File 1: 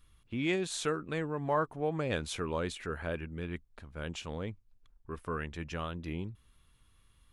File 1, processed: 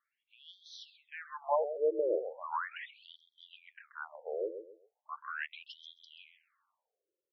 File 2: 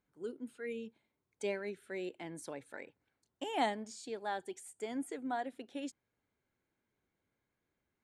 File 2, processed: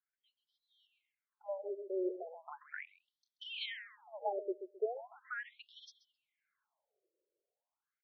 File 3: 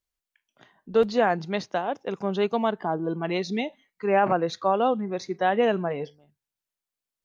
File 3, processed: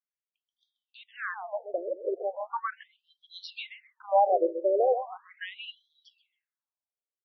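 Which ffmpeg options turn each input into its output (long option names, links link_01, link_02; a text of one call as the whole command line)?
ffmpeg -i in.wav -filter_complex "[0:a]highshelf=frequency=4400:gain=-9.5,dynaudnorm=framelen=420:gausssize=7:maxgain=13.5dB,asplit=2[link_01][link_02];[link_02]adelay=132,lowpass=frequency=2600:poles=1,volume=-9dB,asplit=2[link_03][link_04];[link_04]adelay=132,lowpass=frequency=2600:poles=1,volume=0.29,asplit=2[link_05][link_06];[link_06]adelay=132,lowpass=frequency=2600:poles=1,volume=0.29[link_07];[link_03][link_05][link_07]amix=inputs=3:normalize=0[link_08];[link_01][link_08]amix=inputs=2:normalize=0,afftfilt=real='re*between(b*sr/1024,430*pow(4500/430,0.5+0.5*sin(2*PI*0.38*pts/sr))/1.41,430*pow(4500/430,0.5+0.5*sin(2*PI*0.38*pts/sr))*1.41)':imag='im*between(b*sr/1024,430*pow(4500/430,0.5+0.5*sin(2*PI*0.38*pts/sr))/1.41,430*pow(4500/430,0.5+0.5*sin(2*PI*0.38*pts/sr))*1.41)':win_size=1024:overlap=0.75,volume=-7dB" out.wav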